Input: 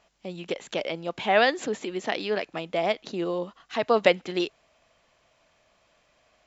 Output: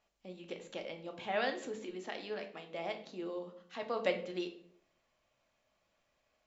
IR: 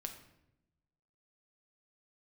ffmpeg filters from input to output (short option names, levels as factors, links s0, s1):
-filter_complex "[0:a]asettb=1/sr,asplit=3[s0][s1][s2];[s0]atrim=end=1.914[s3];[s1]atrim=start=1.91:end=4.03,asetpts=PTS-STARTPTS,afade=t=in:d=0.004:c=qsin,afade=t=out:st=2.116:d=0.004:c=qsin,lowshelf=f=110:g=-11[s4];[s2]atrim=start=4.026[s5];[s3][s4]acrossfade=d=0.004:c1=hsin:c2=qsin[s6];[s6][s5]acrossfade=d=0.004:c1=qsin:c2=hsin[s7];[1:a]atrim=start_sample=2205,asetrate=74970,aresample=44100[s8];[s7][s8]afir=irnorm=-1:irlink=0,volume=0.501"